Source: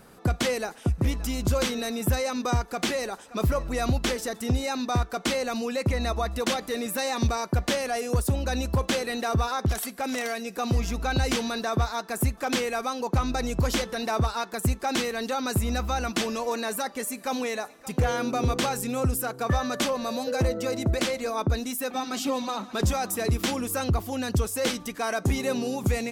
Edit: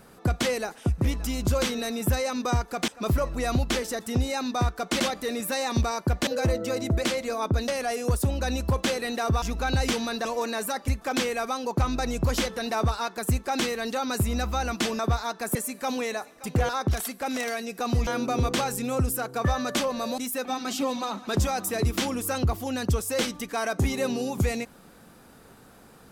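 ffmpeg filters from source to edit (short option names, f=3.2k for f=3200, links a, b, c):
-filter_complex "[0:a]asplit=13[a][b][c][d][e][f][g][h][i][j][k][l][m];[a]atrim=end=2.882[n];[b]atrim=start=3.218:end=5.342[o];[c]atrim=start=6.458:end=7.732[p];[d]atrim=start=20.228:end=21.642[q];[e]atrim=start=7.728:end=9.472[r];[f]atrim=start=10.848:end=11.682[s];[g]atrim=start=16.348:end=16.982[t];[h]atrim=start=12.238:end=16.352[u];[i]atrim=start=11.678:end=12.242[v];[j]atrim=start=16.978:end=18.122[w];[k]atrim=start=9.468:end=10.852[x];[l]atrim=start=18.118:end=20.232[y];[m]atrim=start=21.638[z];[n][o]acrossfade=d=0.004:c1=hsin:c2=hsin[aa];[aa][p]acrossfade=d=0.004:c1=hsin:c2=hsin[ab];[ab][q]acrossfade=d=0.004:c1=hsin:c2=hsin[ac];[ac][r]acrossfade=d=0.004:c1=hsin:c2=hsin[ad];[ad][s]acrossfade=d=0.004:c1=hsin:c2=hsin[ae];[ae][t]acrossfade=d=0.004:c1=hsin:c2=hsin[af];[af][u]acrossfade=d=0.004:c1=hsin:c2=hsin[ag];[ag][v]acrossfade=d=0.004:c1=hsin:c2=hsin[ah];[ah][w]acrossfade=d=0.004:c1=hsin:c2=hsin[ai];[ai][x]acrossfade=d=0.004:c1=hsin:c2=hsin[aj];[aj][y]acrossfade=d=0.004:c1=hsin:c2=hsin[ak];[ak][z]acrossfade=d=0.004:c1=hsin:c2=hsin"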